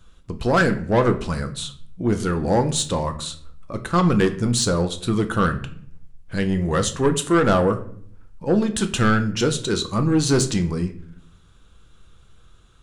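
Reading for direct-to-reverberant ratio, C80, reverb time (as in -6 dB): 7.0 dB, 16.5 dB, 0.60 s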